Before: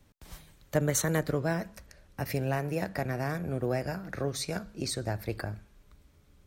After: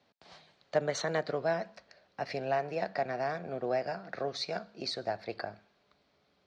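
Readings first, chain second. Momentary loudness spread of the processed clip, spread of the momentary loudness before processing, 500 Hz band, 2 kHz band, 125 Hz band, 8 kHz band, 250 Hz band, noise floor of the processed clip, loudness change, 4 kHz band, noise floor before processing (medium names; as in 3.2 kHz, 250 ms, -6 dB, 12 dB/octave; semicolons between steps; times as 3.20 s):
9 LU, 17 LU, +0.5 dB, -2.0 dB, -13.0 dB, -12.5 dB, -8.5 dB, -72 dBFS, -2.5 dB, +0.5 dB, -62 dBFS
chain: cabinet simulation 260–5000 Hz, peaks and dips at 300 Hz -6 dB, 700 Hz +8 dB, 4.4 kHz +6 dB; trim -2 dB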